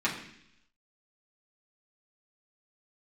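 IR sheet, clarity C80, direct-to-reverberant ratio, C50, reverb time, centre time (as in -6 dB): 10.0 dB, -7.0 dB, 7.5 dB, 0.70 s, 26 ms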